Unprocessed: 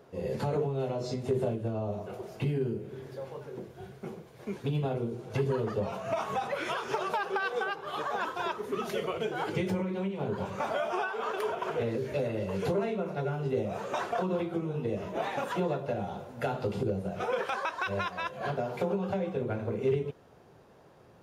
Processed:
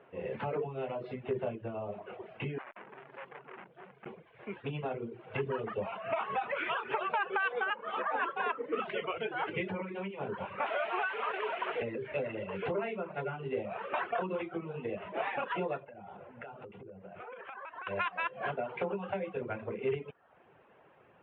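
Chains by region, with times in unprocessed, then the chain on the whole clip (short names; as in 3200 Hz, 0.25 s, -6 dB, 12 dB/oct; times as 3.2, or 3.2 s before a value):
2.58–4.06 resonant low shelf 130 Hz -7.5 dB, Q 3 + hard clip -34 dBFS + core saturation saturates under 1100 Hz
7.7–8.8 LPF 3500 Hz + bell 250 Hz +6 dB 1.4 oct + frequency shift +55 Hz
10.66–11.82 delta modulation 64 kbps, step -30 dBFS + BPF 270–3700 Hz
15.84–17.87 compressor 16:1, threshold -38 dBFS + air absorption 280 m
whole clip: steep low-pass 2900 Hz 48 dB/oct; reverb removal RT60 0.59 s; tilt +3 dB/oct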